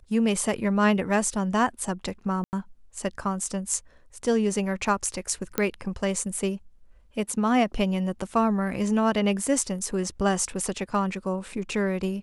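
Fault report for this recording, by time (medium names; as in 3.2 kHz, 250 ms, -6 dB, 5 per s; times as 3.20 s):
2.44–2.53 s: dropout 89 ms
5.58 s: pop -9 dBFS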